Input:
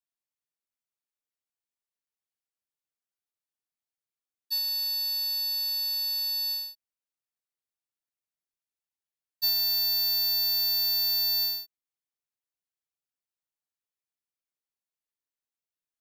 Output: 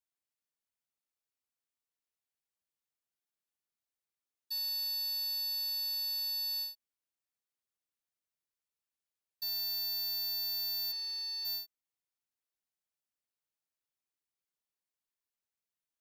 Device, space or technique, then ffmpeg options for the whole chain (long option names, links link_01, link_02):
stacked limiters: -filter_complex "[0:a]asplit=3[link_01][link_02][link_03];[link_01]afade=type=out:start_time=10.91:duration=0.02[link_04];[link_02]lowpass=5700,afade=type=in:start_time=10.91:duration=0.02,afade=type=out:start_time=11.44:duration=0.02[link_05];[link_03]afade=type=in:start_time=11.44:duration=0.02[link_06];[link_04][link_05][link_06]amix=inputs=3:normalize=0,alimiter=level_in=5dB:limit=-24dB:level=0:latency=1:release=417,volume=-5dB,alimiter=level_in=10dB:limit=-24dB:level=0:latency=1,volume=-10dB,volume=-1.5dB"